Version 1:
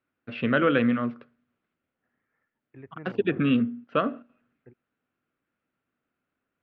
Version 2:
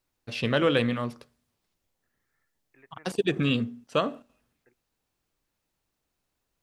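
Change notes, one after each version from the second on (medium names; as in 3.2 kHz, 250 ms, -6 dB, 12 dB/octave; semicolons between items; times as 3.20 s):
first voice: remove cabinet simulation 120–2700 Hz, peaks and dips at 250 Hz +7 dB, 890 Hz -7 dB, 1.4 kHz +8 dB; second voice: add band-pass filter 2.1 kHz, Q 0.75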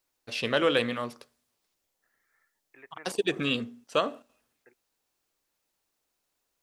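second voice +6.5 dB; master: add tone controls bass -11 dB, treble +4 dB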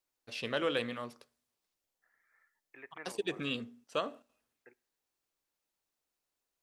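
first voice -8.0 dB; reverb: on, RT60 1.0 s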